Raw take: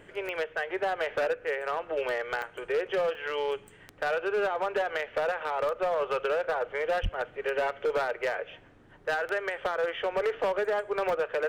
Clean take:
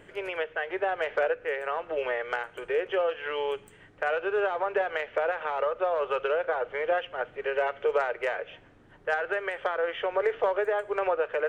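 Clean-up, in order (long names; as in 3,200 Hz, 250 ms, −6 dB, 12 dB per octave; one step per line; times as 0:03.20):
clipped peaks rebuilt −23 dBFS
click removal
0:07.02–0:07.14: high-pass filter 140 Hz 24 dB per octave
repair the gap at 0:02.42/0:03.15/0:07.14, 1.5 ms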